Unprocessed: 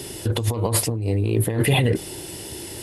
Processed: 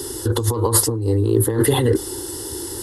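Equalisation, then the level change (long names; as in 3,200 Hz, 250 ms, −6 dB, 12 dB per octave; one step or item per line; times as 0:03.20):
phaser with its sweep stopped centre 650 Hz, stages 6
+7.0 dB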